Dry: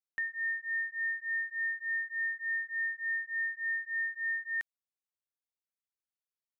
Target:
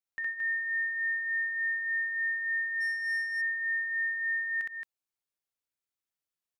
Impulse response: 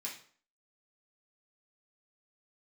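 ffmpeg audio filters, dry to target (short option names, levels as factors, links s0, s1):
-filter_complex "[0:a]aecho=1:1:64.14|221.6:1|0.631,asplit=3[s0][s1][s2];[s0]afade=t=out:st=2.8:d=0.02[s3];[s1]adynamicsmooth=sensitivity=6.5:basefreq=1700,afade=t=in:st=2.8:d=0.02,afade=t=out:st=3.4:d=0.02[s4];[s2]afade=t=in:st=3.4:d=0.02[s5];[s3][s4][s5]amix=inputs=3:normalize=0,volume=0.794"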